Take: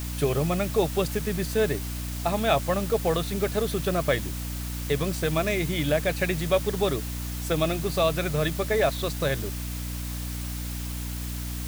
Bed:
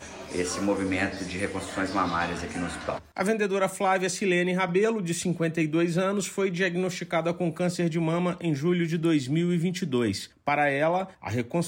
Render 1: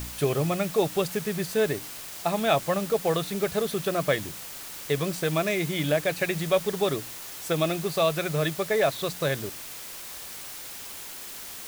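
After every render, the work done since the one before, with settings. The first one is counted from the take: de-hum 60 Hz, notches 5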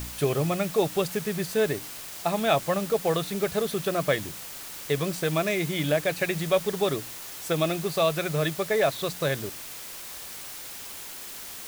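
no audible change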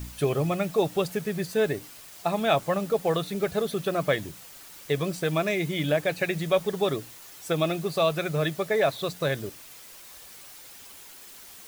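noise reduction 8 dB, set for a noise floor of -40 dBFS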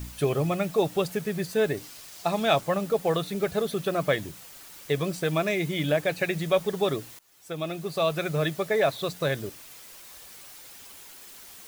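1.77–2.61 s: peaking EQ 5.1 kHz +4.5 dB 1.2 oct; 7.19–8.24 s: fade in, from -21 dB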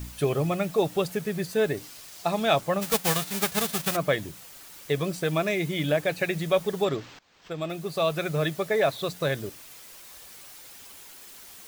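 2.81–3.95 s: formants flattened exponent 0.3; 6.84–7.70 s: decimation joined by straight lines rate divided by 4×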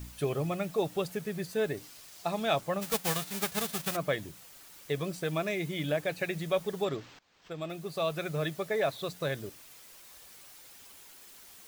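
trim -6 dB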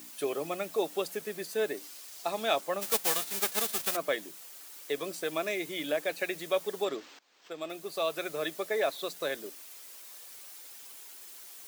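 high-pass 260 Hz 24 dB/octave; treble shelf 4.8 kHz +5.5 dB

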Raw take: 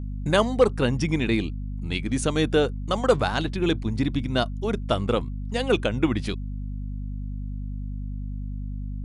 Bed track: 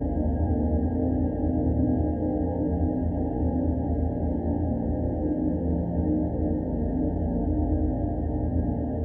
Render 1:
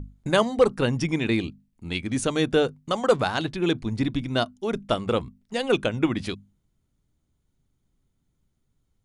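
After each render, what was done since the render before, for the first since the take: hum notches 50/100/150/200/250 Hz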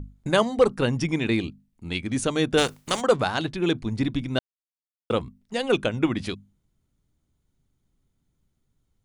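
2.57–3.00 s: spectral contrast reduction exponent 0.52; 4.39–5.10 s: mute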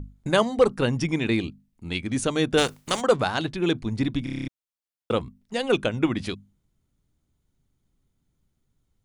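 4.24 s: stutter in place 0.03 s, 8 plays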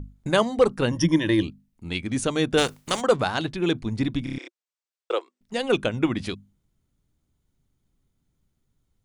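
0.91–1.43 s: rippled EQ curve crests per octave 1.2, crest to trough 15 dB; 4.38–5.41 s: Chebyshev band-pass 350–8400 Hz, order 5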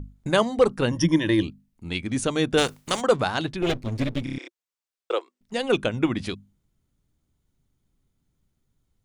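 3.62–4.23 s: comb filter that takes the minimum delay 8 ms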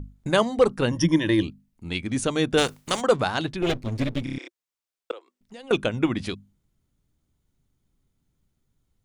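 5.11–5.71 s: compression 3:1, threshold -44 dBFS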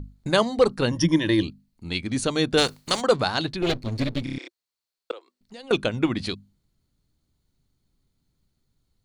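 peaking EQ 4.3 kHz +11.5 dB 0.26 oct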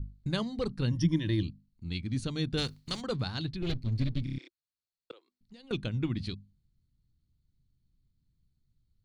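FFT filter 130 Hz 0 dB, 640 Hz -19 dB, 4.3 kHz -10 dB, 7.5 kHz -17 dB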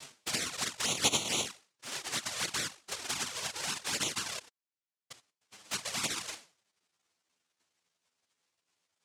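noise-vocoded speech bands 1; touch-sensitive flanger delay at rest 12 ms, full sweep at -25.5 dBFS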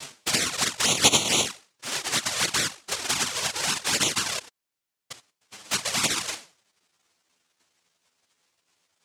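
trim +9.5 dB

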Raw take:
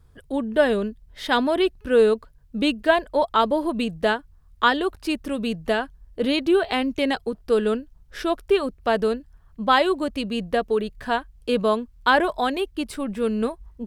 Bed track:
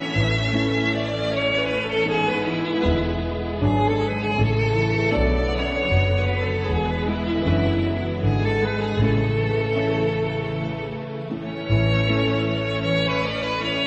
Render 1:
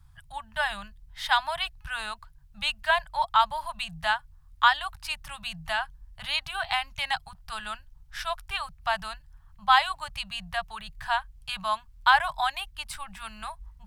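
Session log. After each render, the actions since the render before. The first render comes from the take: elliptic band-stop 150–800 Hz, stop band 40 dB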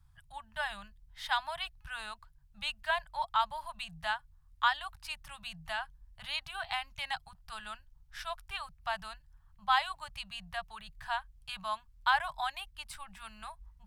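trim -8 dB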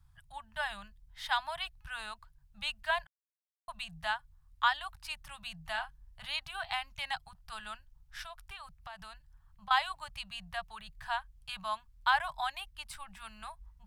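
3.07–3.68 s: mute; 5.71–6.25 s: doubling 37 ms -9 dB; 8.25–9.71 s: compression 5:1, threshold -43 dBFS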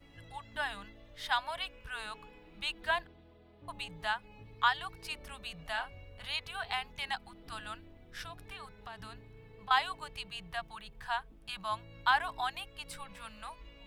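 add bed track -34 dB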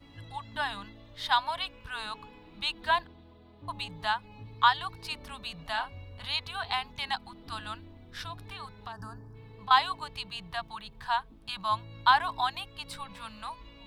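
8.92–9.35 s: time-frequency box 1.8–4.5 kHz -22 dB; fifteen-band graphic EQ 100 Hz +9 dB, 250 Hz +8 dB, 1 kHz +8 dB, 4 kHz +8 dB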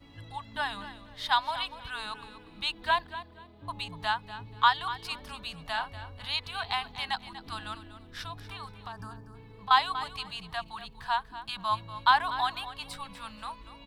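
feedback delay 241 ms, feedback 23%, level -13.5 dB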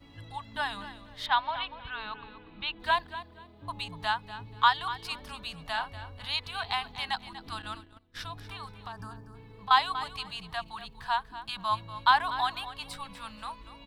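1.26–2.80 s: low-pass 3.5 kHz 24 dB/octave; 7.62–8.21 s: gate -47 dBFS, range -18 dB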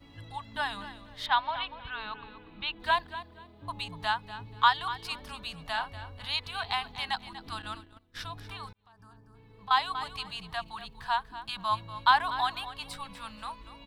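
8.73–10.15 s: fade in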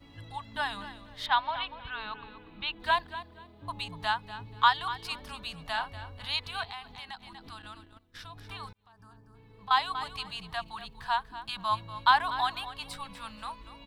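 6.64–8.50 s: compression 2:1, threshold -46 dBFS

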